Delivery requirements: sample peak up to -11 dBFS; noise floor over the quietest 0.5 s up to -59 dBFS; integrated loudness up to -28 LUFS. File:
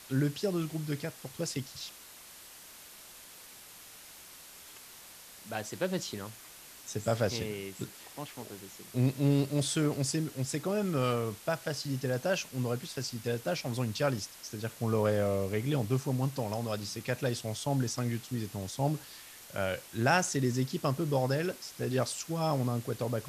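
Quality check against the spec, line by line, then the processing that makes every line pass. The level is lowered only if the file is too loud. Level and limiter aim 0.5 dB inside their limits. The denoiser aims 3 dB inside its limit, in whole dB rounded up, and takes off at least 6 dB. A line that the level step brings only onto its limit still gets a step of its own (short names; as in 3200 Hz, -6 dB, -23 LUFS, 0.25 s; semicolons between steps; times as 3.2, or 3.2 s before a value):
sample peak -12.0 dBFS: OK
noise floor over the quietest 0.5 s -51 dBFS: fail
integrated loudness -32.5 LUFS: OK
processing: denoiser 11 dB, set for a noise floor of -51 dBFS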